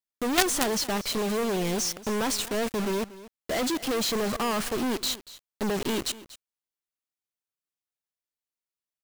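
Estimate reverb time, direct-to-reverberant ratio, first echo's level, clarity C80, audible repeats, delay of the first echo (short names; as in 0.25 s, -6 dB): none, none, -17.5 dB, none, 1, 0.238 s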